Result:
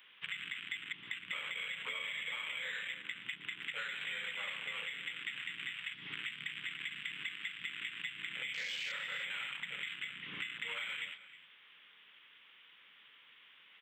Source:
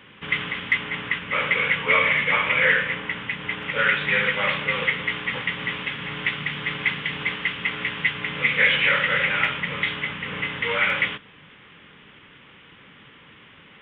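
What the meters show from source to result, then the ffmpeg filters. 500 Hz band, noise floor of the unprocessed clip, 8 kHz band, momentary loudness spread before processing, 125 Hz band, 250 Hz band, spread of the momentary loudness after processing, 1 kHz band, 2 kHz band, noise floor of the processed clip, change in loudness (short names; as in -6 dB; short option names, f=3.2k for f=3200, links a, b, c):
-27.5 dB, -50 dBFS, n/a, 10 LU, -27.5 dB, -26.0 dB, 20 LU, -23.5 dB, -18.5 dB, -62 dBFS, -17.5 dB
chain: -filter_complex "[0:a]afwtdn=0.0501,aderivative,acrossover=split=250|3000[a][b][c];[b]acompressor=threshold=-57dB:ratio=1.5[d];[a][d][c]amix=inputs=3:normalize=0,acrossover=split=170|390|810[e][f][g][h];[h]alimiter=level_in=10dB:limit=-24dB:level=0:latency=1:release=89,volume=-10dB[i];[e][f][g][i]amix=inputs=4:normalize=0,acompressor=threshold=-54dB:ratio=6,asplit=2[j][k];[k]adelay=314.9,volume=-14dB,highshelf=f=4k:g=-7.08[l];[j][l]amix=inputs=2:normalize=0,volume=15.5dB"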